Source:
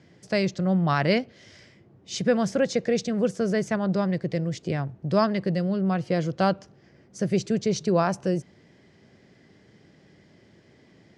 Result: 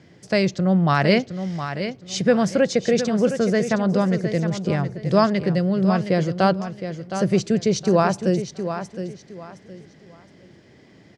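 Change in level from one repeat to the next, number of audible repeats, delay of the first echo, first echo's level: -11.5 dB, 3, 0.715 s, -9.5 dB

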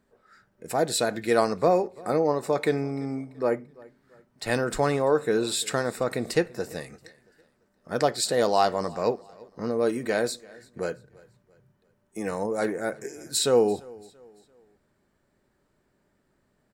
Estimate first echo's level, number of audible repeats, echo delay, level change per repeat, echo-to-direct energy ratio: -23.5 dB, 2, 0.339 s, -8.0 dB, -23.0 dB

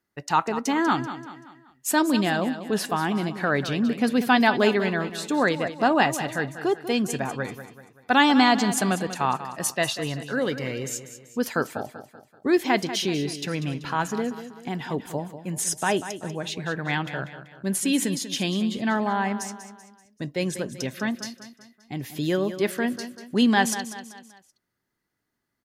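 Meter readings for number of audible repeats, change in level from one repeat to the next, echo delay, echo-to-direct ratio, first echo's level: 4, -7.0 dB, 0.192 s, -11.0 dB, -12.0 dB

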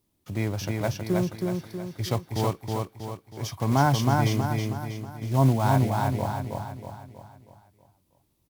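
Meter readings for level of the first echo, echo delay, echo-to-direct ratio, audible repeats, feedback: -3.0 dB, 0.32 s, -2.0 dB, 5, 47%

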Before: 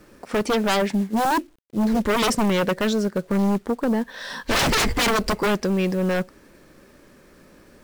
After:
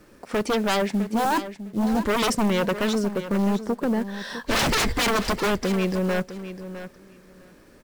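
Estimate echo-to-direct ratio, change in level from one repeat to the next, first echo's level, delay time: -12.0 dB, -16.5 dB, -12.0 dB, 0.656 s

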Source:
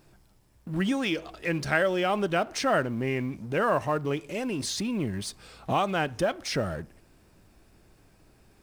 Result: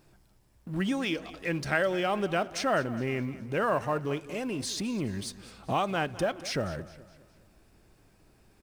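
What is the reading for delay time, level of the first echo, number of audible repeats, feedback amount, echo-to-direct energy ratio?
0.207 s, -17.0 dB, 3, 45%, -16.0 dB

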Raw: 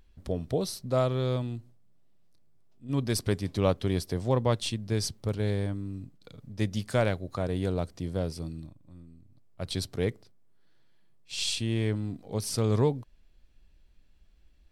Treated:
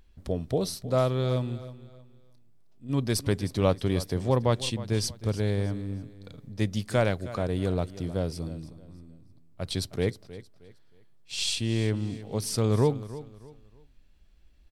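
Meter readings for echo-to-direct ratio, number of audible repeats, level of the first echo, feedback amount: -15.5 dB, 2, -16.0 dB, 31%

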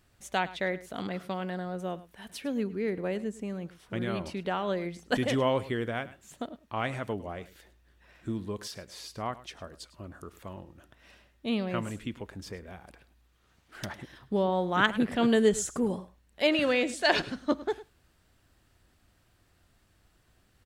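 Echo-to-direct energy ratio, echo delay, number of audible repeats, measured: -17.5 dB, 0.104 s, 1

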